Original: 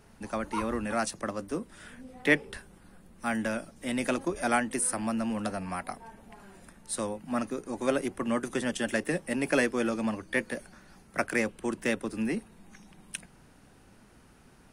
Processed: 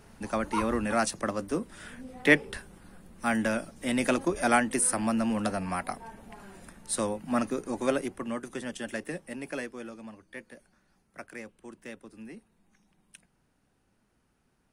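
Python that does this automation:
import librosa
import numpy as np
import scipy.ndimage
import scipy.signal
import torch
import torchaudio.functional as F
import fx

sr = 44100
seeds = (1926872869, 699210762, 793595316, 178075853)

y = fx.gain(x, sr, db=fx.line((7.69, 3.0), (8.4, -6.0), (9.06, -6.0), (10.07, -14.5)))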